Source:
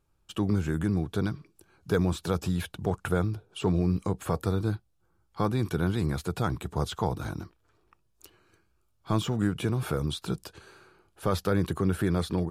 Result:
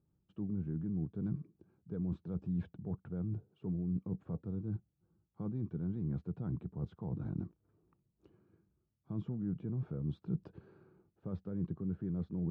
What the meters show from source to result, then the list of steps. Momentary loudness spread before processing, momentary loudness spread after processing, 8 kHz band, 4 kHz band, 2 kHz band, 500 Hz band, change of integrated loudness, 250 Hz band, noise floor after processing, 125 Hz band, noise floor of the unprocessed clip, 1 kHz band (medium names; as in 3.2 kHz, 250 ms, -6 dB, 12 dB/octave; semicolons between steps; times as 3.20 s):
9 LU, 6 LU, under -35 dB, under -30 dB, under -25 dB, -17.5 dB, -10.5 dB, -8.5 dB, -82 dBFS, -9.0 dB, -70 dBFS, -25.5 dB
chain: reverse; compression 12:1, threshold -34 dBFS, peak gain reduction 15 dB; reverse; band-pass filter 180 Hz, Q 1.5; distance through air 100 m; trim +4.5 dB